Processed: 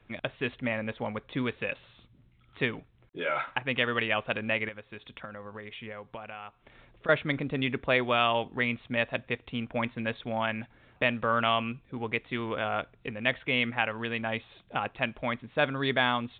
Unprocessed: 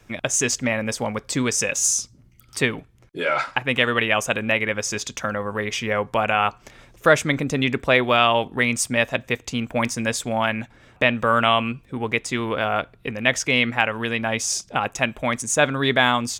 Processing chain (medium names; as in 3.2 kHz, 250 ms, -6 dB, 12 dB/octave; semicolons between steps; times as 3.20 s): 4.68–7.09 s: compression 12:1, threshold -30 dBFS, peak gain reduction 18 dB; trim -8 dB; µ-law 64 kbps 8 kHz